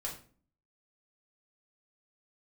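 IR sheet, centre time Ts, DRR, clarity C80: 23 ms, −3.0 dB, 12.5 dB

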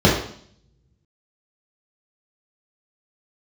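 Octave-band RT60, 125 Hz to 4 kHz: 1.0, 0.75, 0.60, 0.55, 0.55, 0.65 seconds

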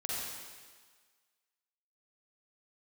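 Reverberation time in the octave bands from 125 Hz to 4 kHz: 1.3, 1.4, 1.5, 1.6, 1.6, 1.6 seconds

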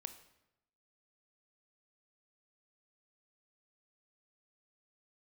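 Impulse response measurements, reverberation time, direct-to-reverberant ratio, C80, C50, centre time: 0.90 s, 9.0 dB, 14.5 dB, 12.0 dB, 9 ms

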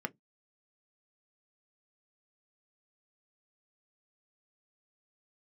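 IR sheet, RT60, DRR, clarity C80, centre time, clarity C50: non-exponential decay, 7.5 dB, 45.0 dB, 3 ms, 29.5 dB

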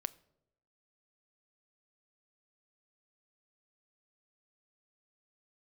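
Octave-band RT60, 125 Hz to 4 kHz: 0.90, 0.90, 0.95, 0.75, 0.55, 0.50 seconds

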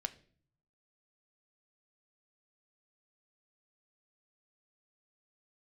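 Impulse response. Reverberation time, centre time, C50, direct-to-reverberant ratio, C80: 0.50 s, 5 ms, 17.5 dB, 7.5 dB, 21.5 dB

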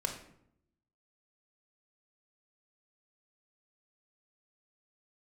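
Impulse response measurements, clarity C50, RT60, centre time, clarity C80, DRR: 7.5 dB, 0.70 s, 20 ms, 10.5 dB, 3.0 dB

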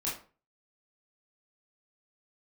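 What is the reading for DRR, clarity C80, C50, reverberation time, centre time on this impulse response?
−7.0 dB, 11.5 dB, 5.5 dB, 0.40 s, 36 ms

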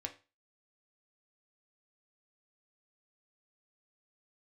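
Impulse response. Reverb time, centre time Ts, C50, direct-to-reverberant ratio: 0.30 s, 9 ms, 14.0 dB, 3.0 dB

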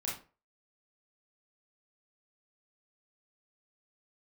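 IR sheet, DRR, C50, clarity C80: −5.5 dB, 4.5 dB, 12.0 dB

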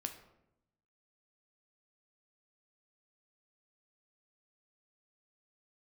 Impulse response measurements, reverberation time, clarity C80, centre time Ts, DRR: 0.85 s, 12.5 dB, 14 ms, 5.5 dB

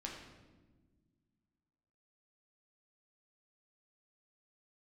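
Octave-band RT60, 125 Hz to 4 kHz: 2.4, 2.5, 1.7, 1.1, 1.0, 0.85 seconds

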